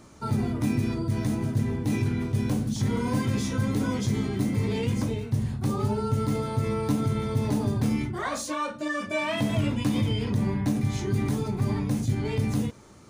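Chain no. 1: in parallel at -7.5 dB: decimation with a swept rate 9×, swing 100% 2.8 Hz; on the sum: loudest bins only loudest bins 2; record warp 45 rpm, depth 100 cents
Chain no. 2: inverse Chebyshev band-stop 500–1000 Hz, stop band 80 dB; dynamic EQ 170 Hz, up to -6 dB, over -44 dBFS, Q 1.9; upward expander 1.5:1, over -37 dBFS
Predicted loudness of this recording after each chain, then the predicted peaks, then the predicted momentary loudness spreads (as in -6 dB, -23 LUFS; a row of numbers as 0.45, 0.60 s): -29.0, -35.5 LUFS; -16.0, -17.0 dBFS; 4, 8 LU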